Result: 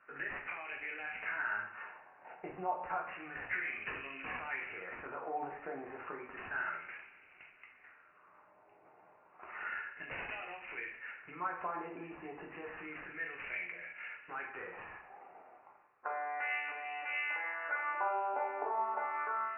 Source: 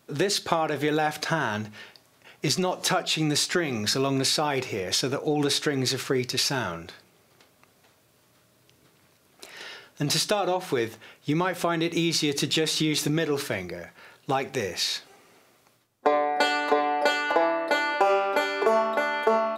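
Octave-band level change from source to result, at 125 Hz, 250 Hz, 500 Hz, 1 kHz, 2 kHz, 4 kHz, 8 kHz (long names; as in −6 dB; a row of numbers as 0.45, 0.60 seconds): −28.5 dB, −24.0 dB, −20.0 dB, −11.0 dB, −8.0 dB, −29.5 dB, below −40 dB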